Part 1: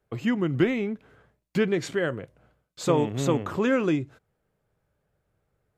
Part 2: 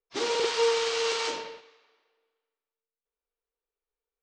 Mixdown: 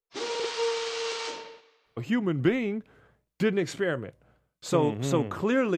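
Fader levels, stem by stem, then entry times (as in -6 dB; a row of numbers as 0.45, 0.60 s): -1.5, -4.0 dB; 1.85, 0.00 s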